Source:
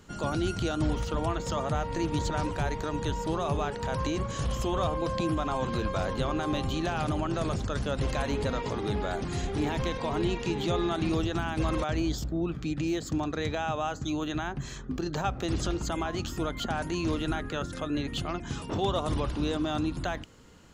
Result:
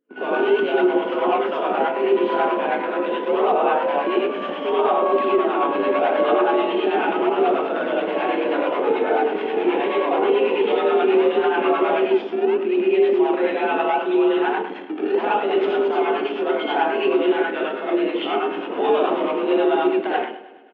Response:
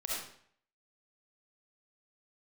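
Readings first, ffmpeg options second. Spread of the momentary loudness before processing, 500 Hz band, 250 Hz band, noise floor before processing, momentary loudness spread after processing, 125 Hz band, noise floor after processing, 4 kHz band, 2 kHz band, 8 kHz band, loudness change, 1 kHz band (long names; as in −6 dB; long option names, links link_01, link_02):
4 LU, +15.0 dB, +7.5 dB, −40 dBFS, 5 LU, below −15 dB, −30 dBFS, +4.5 dB, +11.0 dB, below −25 dB, +10.5 dB, +12.0 dB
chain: -filter_complex "[0:a]areverse,acompressor=mode=upward:threshold=-39dB:ratio=2.5,areverse[link_01];[1:a]atrim=start_sample=2205,asetrate=48510,aresample=44100[link_02];[link_01][link_02]afir=irnorm=-1:irlink=0,anlmdn=0.631,asplit=2[link_03][link_04];[link_04]acrusher=samples=25:mix=1:aa=0.000001:lfo=1:lforange=40:lforate=0.75,volume=-6.5dB[link_05];[link_03][link_05]amix=inputs=2:normalize=0,aecho=1:1:102|204|306|408|510|612:0.158|0.0951|0.0571|0.0342|0.0205|0.0123,acontrast=88,equalizer=frequency=350:width=0.68:gain=5,aexciter=amount=1.1:drive=6.3:freq=2200,highpass=frequency=220:width_type=q:width=0.5412,highpass=frequency=220:width_type=q:width=1.307,lowpass=frequency=3200:width_type=q:width=0.5176,lowpass=frequency=3200:width_type=q:width=0.7071,lowpass=frequency=3200:width_type=q:width=1.932,afreqshift=56,adynamicequalizer=threshold=0.0178:dfrequency=960:dqfactor=4.3:tfrequency=960:tqfactor=4.3:attack=5:release=100:ratio=0.375:range=2:mode=boostabove:tftype=bell,acrossover=split=700[link_06][link_07];[link_06]aeval=exprs='val(0)*(1-0.5/2+0.5/2*cos(2*PI*9.3*n/s))':channel_layout=same[link_08];[link_07]aeval=exprs='val(0)*(1-0.5/2-0.5/2*cos(2*PI*9.3*n/s))':channel_layout=same[link_09];[link_08][link_09]amix=inputs=2:normalize=0,alimiter=level_in=7dB:limit=-1dB:release=50:level=0:latency=1,volume=-8dB"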